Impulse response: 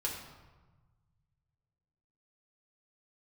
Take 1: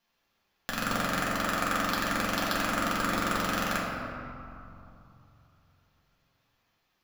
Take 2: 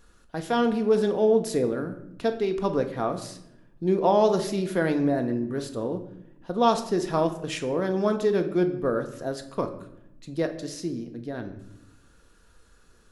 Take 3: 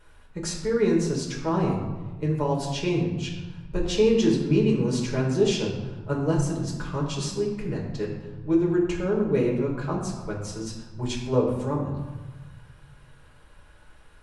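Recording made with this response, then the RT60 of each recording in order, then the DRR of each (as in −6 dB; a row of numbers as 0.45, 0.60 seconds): 3; 2.8, 0.85, 1.3 seconds; −6.0, 5.5, −3.0 decibels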